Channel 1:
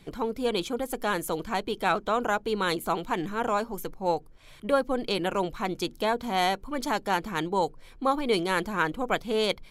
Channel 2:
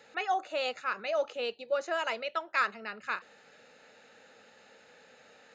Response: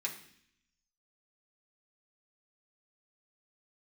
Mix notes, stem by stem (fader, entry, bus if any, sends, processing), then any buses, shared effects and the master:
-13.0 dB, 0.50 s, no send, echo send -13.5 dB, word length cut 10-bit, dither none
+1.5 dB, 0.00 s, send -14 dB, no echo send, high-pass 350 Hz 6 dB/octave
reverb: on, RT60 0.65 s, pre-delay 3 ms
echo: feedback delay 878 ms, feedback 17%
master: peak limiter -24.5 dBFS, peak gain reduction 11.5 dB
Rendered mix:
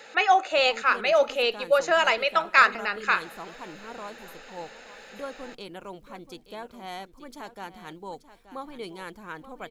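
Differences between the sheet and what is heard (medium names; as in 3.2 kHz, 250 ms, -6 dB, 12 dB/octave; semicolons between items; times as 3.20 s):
stem 2 +1.5 dB -> +10.5 dB; master: missing peak limiter -24.5 dBFS, peak gain reduction 11.5 dB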